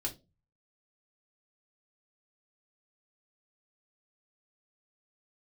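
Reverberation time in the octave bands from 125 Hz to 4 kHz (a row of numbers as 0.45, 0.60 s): 0.60, 0.40, 0.35, 0.20, 0.20, 0.20 s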